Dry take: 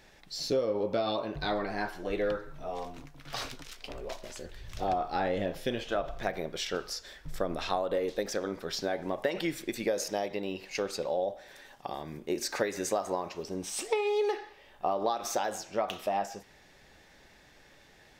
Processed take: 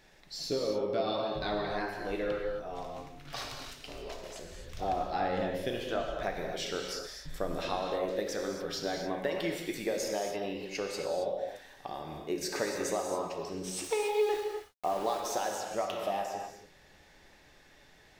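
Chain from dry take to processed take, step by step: 13.84–15.20 s: small samples zeroed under -38 dBFS; gated-style reverb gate 300 ms flat, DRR 1.5 dB; trim -3.5 dB

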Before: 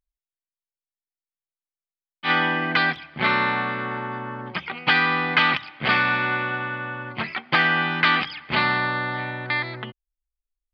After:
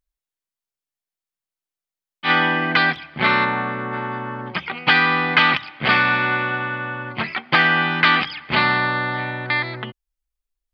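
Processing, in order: 3.44–3.92 s: low-pass 1.7 kHz -> 1.2 kHz 6 dB/octave; trim +3.5 dB

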